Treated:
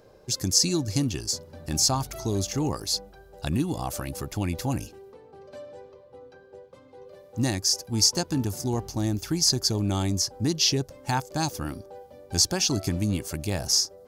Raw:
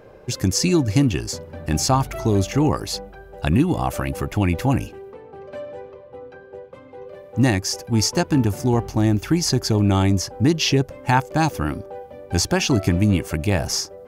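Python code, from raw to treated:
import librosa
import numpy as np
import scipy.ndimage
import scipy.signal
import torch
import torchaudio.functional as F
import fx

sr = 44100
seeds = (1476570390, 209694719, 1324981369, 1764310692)

y = fx.high_shelf_res(x, sr, hz=3400.0, db=8.5, q=1.5)
y = y * 10.0 ** (-8.5 / 20.0)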